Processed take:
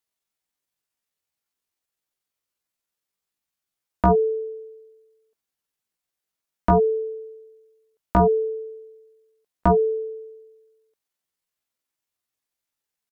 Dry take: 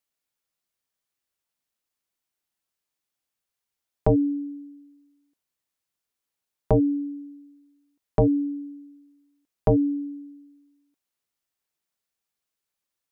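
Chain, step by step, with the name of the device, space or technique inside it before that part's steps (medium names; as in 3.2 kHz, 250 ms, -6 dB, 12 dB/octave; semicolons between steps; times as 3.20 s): chipmunk voice (pitch shift +7.5 st); trim +2 dB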